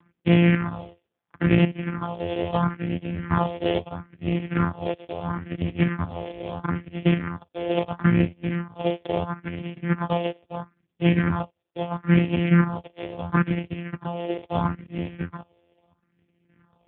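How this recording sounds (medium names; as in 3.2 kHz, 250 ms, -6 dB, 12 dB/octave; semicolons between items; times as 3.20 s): a buzz of ramps at a fixed pitch in blocks of 256 samples; phasing stages 4, 0.75 Hz, lowest notch 200–1200 Hz; chopped level 0.91 Hz, depth 60%, duty 50%; AMR-NB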